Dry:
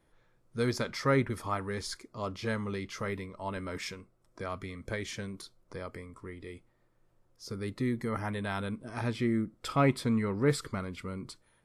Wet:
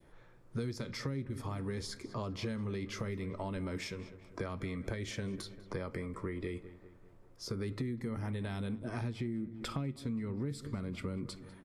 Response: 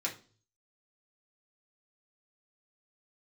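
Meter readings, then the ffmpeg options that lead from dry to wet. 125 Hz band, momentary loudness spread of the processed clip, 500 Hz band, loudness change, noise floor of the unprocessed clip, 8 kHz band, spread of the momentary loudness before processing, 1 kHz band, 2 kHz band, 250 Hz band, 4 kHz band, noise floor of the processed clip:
−3.0 dB, 5 LU, −7.5 dB, −6.0 dB, −70 dBFS, −5.5 dB, 17 LU, −10.0 dB, −8.5 dB, −5.0 dB, −4.5 dB, −59 dBFS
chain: -filter_complex "[0:a]asplit=2[link_01][link_02];[1:a]atrim=start_sample=2205[link_03];[link_02][link_03]afir=irnorm=-1:irlink=0,volume=-14dB[link_04];[link_01][link_04]amix=inputs=2:normalize=0,acrossover=split=320|3000[link_05][link_06][link_07];[link_06]acompressor=threshold=-40dB:ratio=6[link_08];[link_05][link_08][link_07]amix=inputs=3:normalize=0,adynamicequalizer=threshold=0.00224:dfrequency=1200:dqfactor=0.87:tfrequency=1200:tqfactor=0.87:attack=5:release=100:ratio=0.375:range=2.5:mode=cutabove:tftype=bell,asplit=2[link_09][link_10];[link_10]adelay=197,lowpass=frequency=2900:poles=1,volume=-18.5dB,asplit=2[link_11][link_12];[link_12]adelay=197,lowpass=frequency=2900:poles=1,volume=0.54,asplit=2[link_13][link_14];[link_14]adelay=197,lowpass=frequency=2900:poles=1,volume=0.54,asplit=2[link_15][link_16];[link_16]adelay=197,lowpass=frequency=2900:poles=1,volume=0.54,asplit=2[link_17][link_18];[link_18]adelay=197,lowpass=frequency=2900:poles=1,volume=0.54[link_19];[link_09][link_11][link_13][link_15][link_17][link_19]amix=inputs=6:normalize=0,acompressor=threshold=-42dB:ratio=10,highshelf=frequency=3100:gain=-8.5,volume=8dB"

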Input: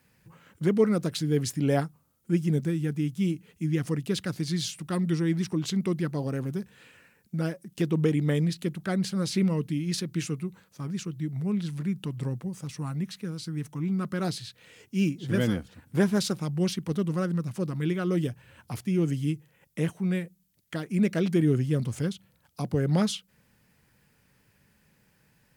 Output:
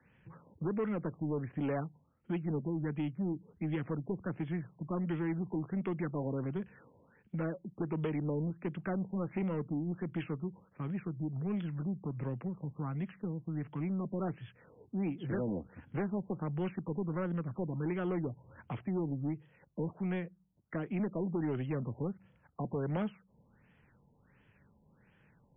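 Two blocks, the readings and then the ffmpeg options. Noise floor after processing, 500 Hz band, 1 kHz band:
−68 dBFS, −7.5 dB, −4.5 dB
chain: -filter_complex "[0:a]acrossover=split=100|260|970|2200[link_01][link_02][link_03][link_04][link_05];[link_01]acompressor=threshold=-53dB:ratio=4[link_06];[link_02]acompressor=threshold=-38dB:ratio=4[link_07];[link_03]acompressor=threshold=-31dB:ratio=4[link_08];[link_04]acompressor=threshold=-45dB:ratio=4[link_09];[link_05]acompressor=threshold=-53dB:ratio=4[link_10];[link_06][link_07][link_08][link_09][link_10]amix=inputs=5:normalize=0,asoftclip=type=tanh:threshold=-28dB,afftfilt=real='re*lt(b*sr/1024,1000*pow(3500/1000,0.5+0.5*sin(2*PI*1.4*pts/sr)))':imag='im*lt(b*sr/1024,1000*pow(3500/1000,0.5+0.5*sin(2*PI*1.4*pts/sr)))':win_size=1024:overlap=0.75"

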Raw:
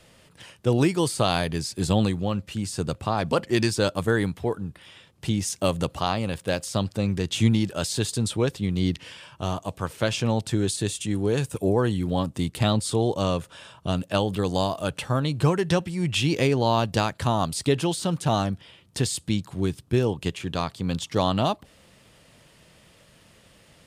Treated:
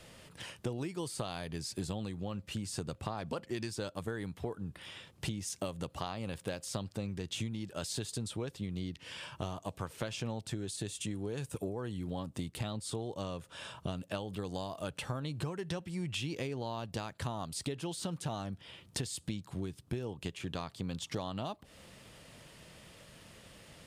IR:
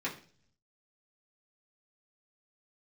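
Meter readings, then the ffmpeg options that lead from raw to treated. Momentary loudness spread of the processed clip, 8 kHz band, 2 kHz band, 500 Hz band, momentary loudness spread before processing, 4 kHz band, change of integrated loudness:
10 LU, −10.5 dB, −13.5 dB, −15.0 dB, 8 LU, −12.0 dB, −14.0 dB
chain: -af "acompressor=threshold=-34dB:ratio=16"

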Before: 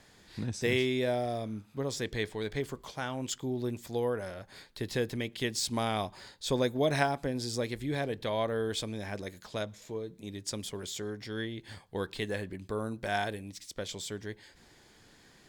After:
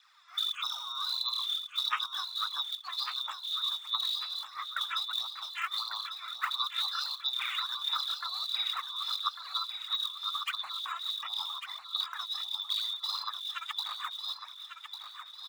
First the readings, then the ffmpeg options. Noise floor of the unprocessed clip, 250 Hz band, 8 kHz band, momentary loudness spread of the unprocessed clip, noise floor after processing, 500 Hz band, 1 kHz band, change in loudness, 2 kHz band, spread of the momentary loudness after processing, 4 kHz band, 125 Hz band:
−60 dBFS, below −40 dB, −9.0 dB, 11 LU, −50 dBFS, below −35 dB, +0.5 dB, +1.5 dB, −3.0 dB, 6 LU, +11.0 dB, below −40 dB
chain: -af "afftfilt=real='real(if(lt(b,272),68*(eq(floor(b/68),0)*2+eq(floor(b/68),1)*3+eq(floor(b/68),2)*0+eq(floor(b/68),3)*1)+mod(b,68),b),0)':imag='imag(if(lt(b,272),68*(eq(floor(b/68),0)*2+eq(floor(b/68),1)*3+eq(floor(b/68),2)*0+eq(floor(b/68),3)*1)+mod(b,68),b),0)':win_size=2048:overlap=0.75,lowpass=frequency=1900:poles=1,aemphasis=mode=reproduction:type=riaa,afftdn=noise_reduction=13:noise_floor=-49,acompressor=threshold=-47dB:ratio=12,highpass=frequency=790:width_type=q:width=3.4,afreqshift=440,aphaser=in_gain=1:out_gain=1:delay=3:decay=0.66:speed=1.5:type=sinusoidal,crystalizer=i=4.5:c=0,aecho=1:1:1148|2296|3444|4592|5740:0.376|0.162|0.0695|0.0299|0.0128,volume=6.5dB"

